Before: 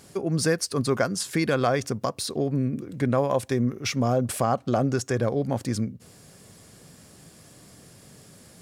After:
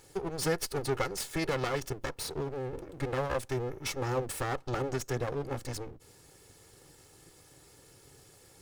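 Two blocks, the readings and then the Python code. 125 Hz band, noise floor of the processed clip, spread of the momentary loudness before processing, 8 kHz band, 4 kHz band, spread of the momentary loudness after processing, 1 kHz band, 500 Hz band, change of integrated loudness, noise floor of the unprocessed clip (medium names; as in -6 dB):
-9.5 dB, -59 dBFS, 5 LU, -7.0 dB, -6.5 dB, 7 LU, -7.5 dB, -7.5 dB, -8.5 dB, -52 dBFS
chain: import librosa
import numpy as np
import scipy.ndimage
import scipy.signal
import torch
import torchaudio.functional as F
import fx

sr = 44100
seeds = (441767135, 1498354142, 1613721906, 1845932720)

y = fx.lower_of_two(x, sr, delay_ms=2.3)
y = y * librosa.db_to_amplitude(-5.0)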